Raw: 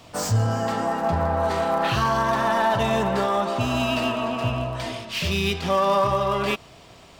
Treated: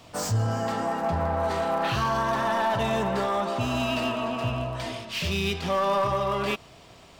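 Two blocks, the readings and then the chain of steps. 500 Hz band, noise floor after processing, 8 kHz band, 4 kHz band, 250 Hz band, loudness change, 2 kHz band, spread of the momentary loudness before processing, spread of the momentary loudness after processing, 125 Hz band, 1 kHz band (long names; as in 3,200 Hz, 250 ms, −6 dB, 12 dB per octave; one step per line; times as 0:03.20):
−3.5 dB, −51 dBFS, −3.0 dB, −3.5 dB, −3.5 dB, −3.5 dB, −3.5 dB, 6 LU, 5 LU, −3.5 dB, −3.5 dB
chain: soft clipping −14 dBFS, distortion −21 dB
level −2.5 dB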